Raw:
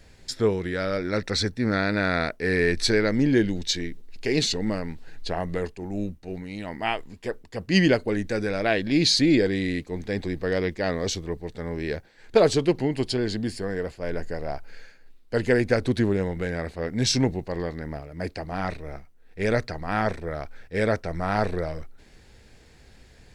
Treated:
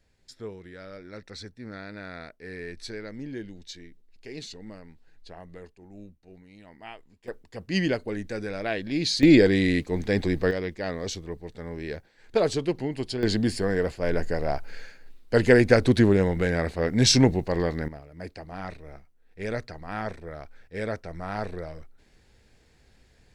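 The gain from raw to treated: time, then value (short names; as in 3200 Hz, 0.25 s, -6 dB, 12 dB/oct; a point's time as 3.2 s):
-16 dB
from 7.28 s -6 dB
from 9.23 s +4 dB
from 10.51 s -5 dB
from 13.23 s +4 dB
from 17.88 s -7.5 dB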